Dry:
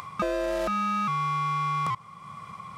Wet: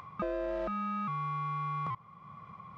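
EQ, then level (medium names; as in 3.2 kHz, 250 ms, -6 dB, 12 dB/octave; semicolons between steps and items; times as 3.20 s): tape spacing loss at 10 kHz 32 dB; -4.5 dB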